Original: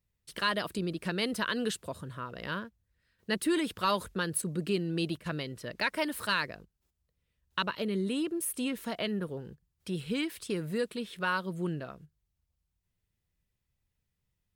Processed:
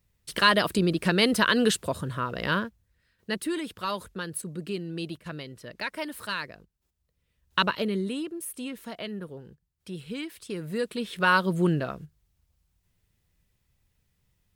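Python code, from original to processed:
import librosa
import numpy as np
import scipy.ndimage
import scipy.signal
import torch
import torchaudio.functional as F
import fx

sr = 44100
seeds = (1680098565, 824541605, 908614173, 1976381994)

y = fx.gain(x, sr, db=fx.line((2.65, 9.5), (3.57, -2.5), (6.54, -2.5), (7.64, 8.0), (8.33, -3.0), (10.41, -3.0), (11.36, 10.0)))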